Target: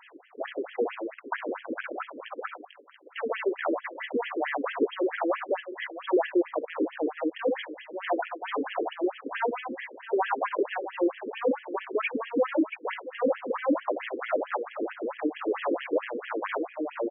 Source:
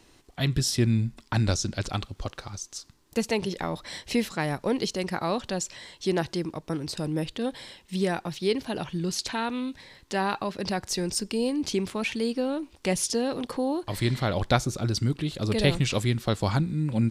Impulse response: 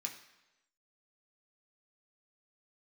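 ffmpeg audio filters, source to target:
-filter_complex "[0:a]asettb=1/sr,asplit=3[a][b][c];[a]atrim=end=8.364[d];[b]atrim=start=8.36:end=9.5,asetpts=PTS-STARTPTS,afade=t=in:d=0.004:c=qsin,afade=t=out:st=1.136:d=0.004:c=qsin,tiltshelf=f=840:g=4[e];[c]atrim=start=9.496[f];[d][e]acrossfade=d=0.004:c1=hsin:c2=qsin[g];[g][f]acrossfade=d=0.004:c1=qsin:c2=hsin,aeval=exprs='0.422*sin(PI/2*4.47*val(0)/0.422)':c=same,asplit=2[h][i];[i]aecho=0:1:59|63|66|681:0.251|0.355|0.119|0.141[j];[h][j]amix=inputs=2:normalize=0,asoftclip=type=tanh:threshold=-12.5dB,lowpass=6.5k,acrossover=split=1400[k][l];[l]alimiter=limit=-21dB:level=0:latency=1:release=21[m];[k][m]amix=inputs=2:normalize=0,afftfilt=real='re*between(b*sr/1024,360*pow(2400/360,0.5+0.5*sin(2*PI*4.5*pts/sr))/1.41,360*pow(2400/360,0.5+0.5*sin(2*PI*4.5*pts/sr))*1.41)':imag='im*between(b*sr/1024,360*pow(2400/360,0.5+0.5*sin(2*PI*4.5*pts/sr))/1.41,360*pow(2400/360,0.5+0.5*sin(2*PI*4.5*pts/sr))*1.41)':win_size=1024:overlap=0.75,volume=-2.5dB"

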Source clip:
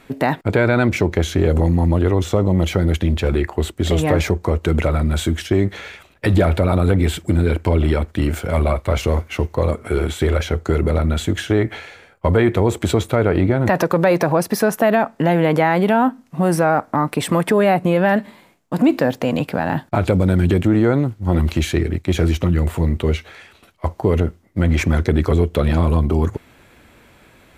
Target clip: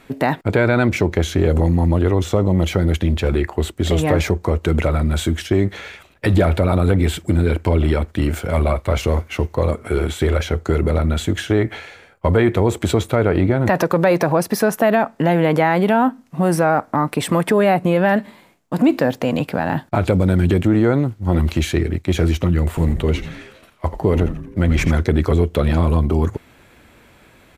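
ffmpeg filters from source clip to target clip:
-filter_complex "[0:a]asplit=3[a][b][c];[a]afade=t=out:st=22.76:d=0.02[d];[b]asplit=7[e][f][g][h][i][j][k];[f]adelay=85,afreqshift=-120,volume=-10.5dB[l];[g]adelay=170,afreqshift=-240,volume=-16.2dB[m];[h]adelay=255,afreqshift=-360,volume=-21.9dB[n];[i]adelay=340,afreqshift=-480,volume=-27.5dB[o];[j]adelay=425,afreqshift=-600,volume=-33.2dB[p];[k]adelay=510,afreqshift=-720,volume=-38.9dB[q];[e][l][m][n][o][p][q]amix=inputs=7:normalize=0,afade=t=in:st=22.76:d=0.02,afade=t=out:st=24.9:d=0.02[r];[c]afade=t=in:st=24.9:d=0.02[s];[d][r][s]amix=inputs=3:normalize=0"

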